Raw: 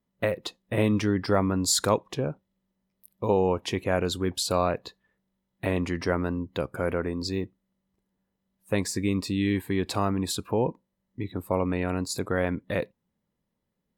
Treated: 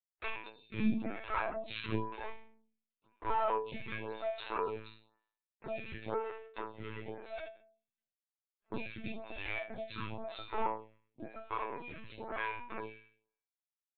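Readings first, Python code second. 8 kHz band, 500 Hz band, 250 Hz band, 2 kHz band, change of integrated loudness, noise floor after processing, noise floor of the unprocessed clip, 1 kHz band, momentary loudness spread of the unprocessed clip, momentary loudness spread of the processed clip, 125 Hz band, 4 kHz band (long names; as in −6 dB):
below −40 dB, −13.0 dB, −14.0 dB, −7.5 dB, −12.0 dB, below −85 dBFS, −81 dBFS, −5.5 dB, 10 LU, 13 LU, −18.0 dB, −15.5 dB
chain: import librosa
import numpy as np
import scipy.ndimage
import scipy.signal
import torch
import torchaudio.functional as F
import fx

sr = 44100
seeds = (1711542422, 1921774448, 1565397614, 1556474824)

y = fx.lower_of_two(x, sr, delay_ms=0.8)
y = fx.highpass(y, sr, hz=330.0, slope=6)
y = fx.dynamic_eq(y, sr, hz=1500.0, q=6.7, threshold_db=-45.0, ratio=4.0, max_db=-4)
y = fx.quant_dither(y, sr, seeds[0], bits=12, dither='none')
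y = fx.resonator_bank(y, sr, root=57, chord='fifth', decay_s=0.56)
y = fx.room_early_taps(y, sr, ms=(14, 26), db=(-7.5, -11.0))
y = fx.lpc_vocoder(y, sr, seeds[1], excitation='pitch_kept', order=16)
y = fx.stagger_phaser(y, sr, hz=0.98)
y = y * 10.0 ** (15.5 / 20.0)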